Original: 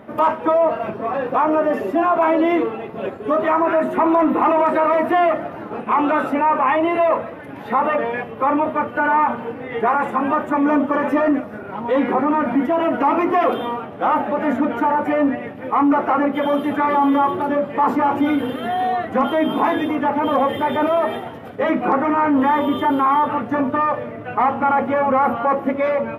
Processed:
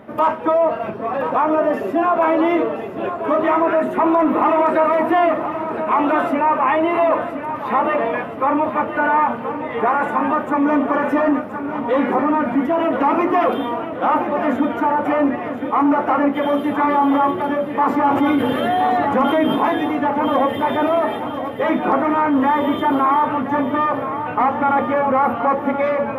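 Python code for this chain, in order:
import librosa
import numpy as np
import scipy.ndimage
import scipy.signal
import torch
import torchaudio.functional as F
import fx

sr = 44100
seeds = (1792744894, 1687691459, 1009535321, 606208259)

y = fx.echo_feedback(x, sr, ms=1024, feedback_pct=55, wet_db=-10)
y = fx.env_flatten(y, sr, amount_pct=50, at=(18.07, 19.56))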